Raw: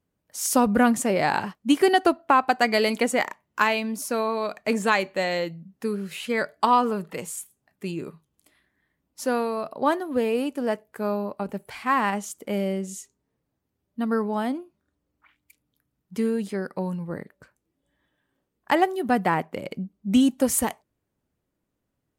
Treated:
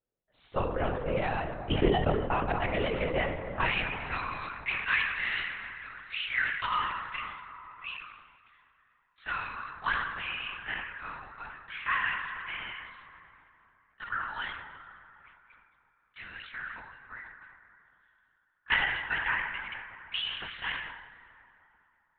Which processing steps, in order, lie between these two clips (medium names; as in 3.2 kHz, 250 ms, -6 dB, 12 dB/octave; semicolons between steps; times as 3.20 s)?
ladder high-pass 320 Hz, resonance 45%, from 3.66 s 1.3 kHz; plate-style reverb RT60 3.3 s, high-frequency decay 0.55×, DRR 5.5 dB; LPC vocoder at 8 kHz whisper; gain riding within 4 dB 0.5 s; dynamic bell 2.8 kHz, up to +6 dB, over -52 dBFS, Q 2.4; decay stretcher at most 51 dB/s